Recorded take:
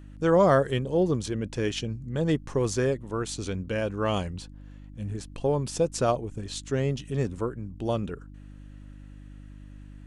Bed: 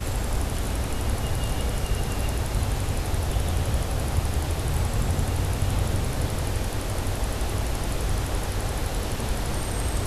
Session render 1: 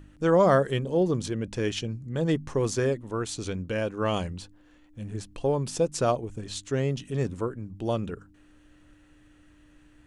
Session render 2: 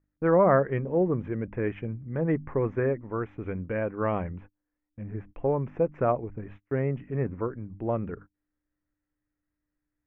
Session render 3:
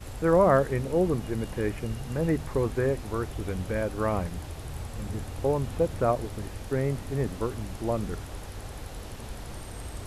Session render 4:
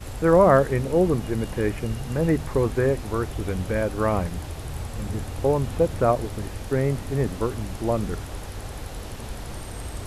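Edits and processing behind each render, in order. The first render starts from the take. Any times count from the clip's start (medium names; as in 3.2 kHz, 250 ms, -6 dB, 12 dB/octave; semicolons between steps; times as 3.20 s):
de-hum 50 Hz, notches 5
elliptic low-pass 2.2 kHz, stop band 50 dB; gate -45 dBFS, range -27 dB
add bed -12 dB
trim +4.5 dB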